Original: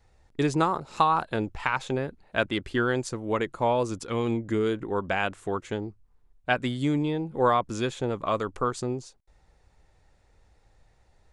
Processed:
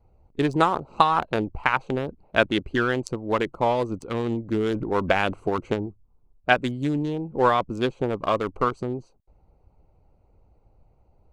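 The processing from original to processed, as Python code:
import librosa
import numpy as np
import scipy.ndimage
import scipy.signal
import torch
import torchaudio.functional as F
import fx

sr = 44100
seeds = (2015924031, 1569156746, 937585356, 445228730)

y = fx.wiener(x, sr, points=25)
y = fx.hpss(y, sr, part='harmonic', gain_db=-6)
y = fx.transient(y, sr, attack_db=4, sustain_db=8, at=(4.54, 5.86))
y = F.gain(torch.from_numpy(y), 6.5).numpy()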